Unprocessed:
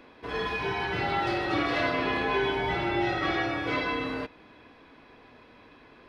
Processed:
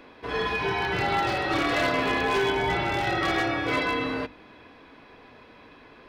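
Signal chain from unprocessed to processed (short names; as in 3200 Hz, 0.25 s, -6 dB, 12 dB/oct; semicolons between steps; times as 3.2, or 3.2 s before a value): wavefolder -21 dBFS; notches 50/100/150/200/250/300/350 Hz; gain +3.5 dB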